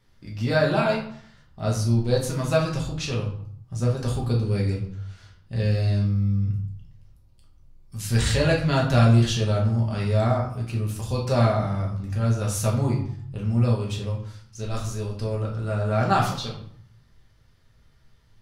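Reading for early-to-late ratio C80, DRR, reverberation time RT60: 10.0 dB, -3.0 dB, 0.60 s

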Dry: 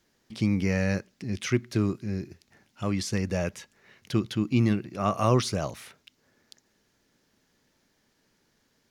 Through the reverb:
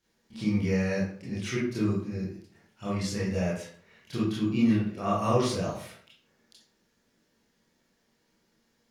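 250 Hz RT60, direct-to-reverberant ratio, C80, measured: 0.55 s, -8.5 dB, 7.5 dB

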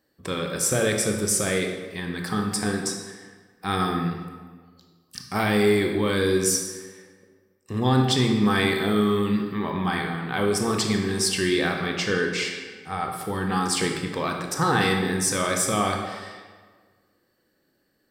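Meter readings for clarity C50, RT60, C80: 4.5 dB, 1.5 s, 6.5 dB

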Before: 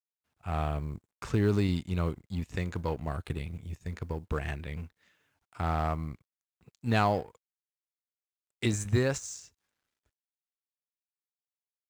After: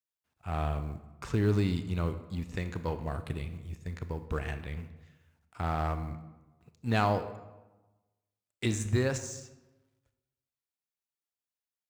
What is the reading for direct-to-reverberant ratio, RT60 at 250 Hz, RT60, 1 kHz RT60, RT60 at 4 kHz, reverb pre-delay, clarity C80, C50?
10.0 dB, 1.3 s, 1.1 s, 1.1 s, 0.70 s, 26 ms, 13.5 dB, 11.5 dB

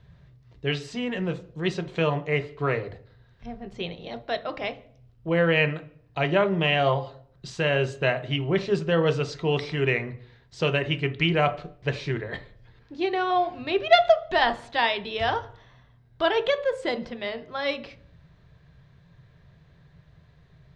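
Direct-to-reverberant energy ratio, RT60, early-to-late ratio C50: 8.0 dB, 0.55 s, 16.0 dB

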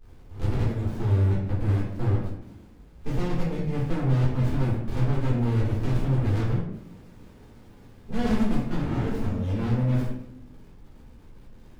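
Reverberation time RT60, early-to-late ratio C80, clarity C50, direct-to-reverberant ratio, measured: 0.85 s, 5.5 dB, 3.0 dB, -6.0 dB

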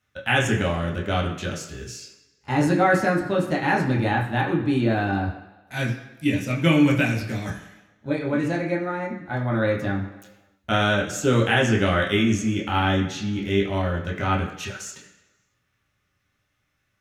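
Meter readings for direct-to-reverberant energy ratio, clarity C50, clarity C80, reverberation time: -3.0 dB, 7.0 dB, 10.0 dB, 1.2 s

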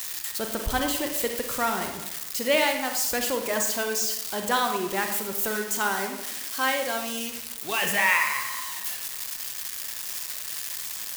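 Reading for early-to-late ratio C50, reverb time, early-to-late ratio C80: 6.0 dB, 0.90 s, 9.0 dB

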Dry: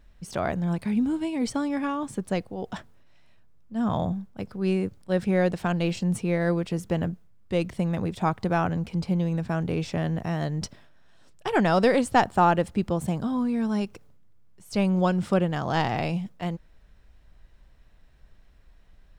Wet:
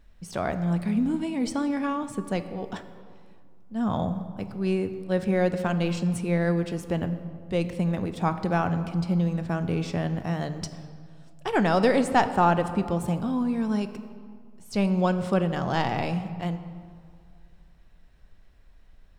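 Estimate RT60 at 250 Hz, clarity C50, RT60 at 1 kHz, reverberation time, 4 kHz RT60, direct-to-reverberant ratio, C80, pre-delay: 2.4 s, 11.0 dB, 2.1 s, 2.1 s, 1.2 s, 9.5 dB, 12.0 dB, 3 ms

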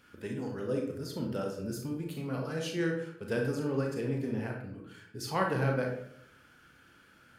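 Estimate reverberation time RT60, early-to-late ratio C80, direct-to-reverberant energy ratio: 0.70 s, 8.5 dB, 1.0 dB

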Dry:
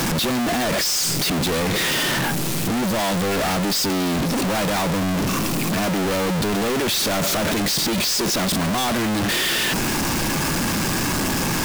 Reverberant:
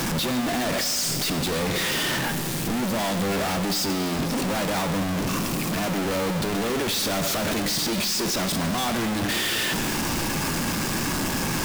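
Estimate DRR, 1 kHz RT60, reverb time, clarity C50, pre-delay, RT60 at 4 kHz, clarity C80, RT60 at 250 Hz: 8.0 dB, 1.9 s, 1.9 s, 9.5 dB, 6 ms, 1.8 s, 11.0 dB, 2.0 s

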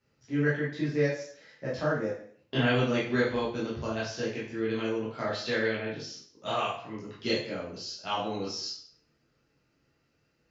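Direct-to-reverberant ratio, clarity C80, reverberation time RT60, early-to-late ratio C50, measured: -8.5 dB, 8.0 dB, 0.55 s, 3.5 dB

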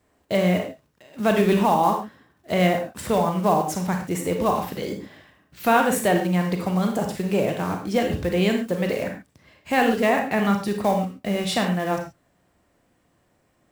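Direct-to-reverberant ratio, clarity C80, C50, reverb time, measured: 3.0 dB, 10.0 dB, 6.5 dB, no single decay rate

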